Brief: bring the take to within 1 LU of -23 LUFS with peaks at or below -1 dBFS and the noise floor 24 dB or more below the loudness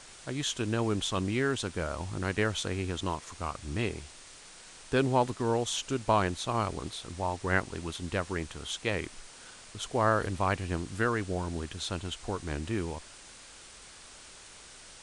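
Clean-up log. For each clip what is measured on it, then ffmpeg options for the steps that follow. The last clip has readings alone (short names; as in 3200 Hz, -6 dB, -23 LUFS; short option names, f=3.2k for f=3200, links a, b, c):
noise floor -51 dBFS; noise floor target -56 dBFS; loudness -32.0 LUFS; peak -12.0 dBFS; loudness target -23.0 LUFS
-> -af "afftdn=nr=6:nf=-51"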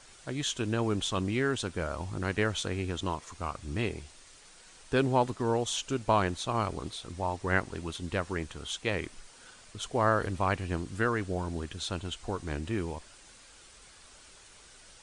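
noise floor -55 dBFS; noise floor target -56 dBFS
-> -af "afftdn=nr=6:nf=-55"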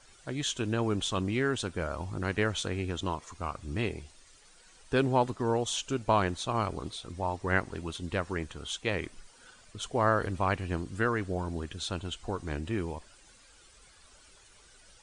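noise floor -58 dBFS; loudness -32.0 LUFS; peak -12.0 dBFS; loudness target -23.0 LUFS
-> -af "volume=9dB"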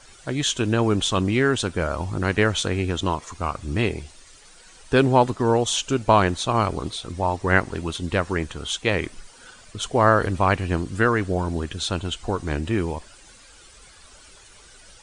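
loudness -23.0 LUFS; peak -3.0 dBFS; noise floor -49 dBFS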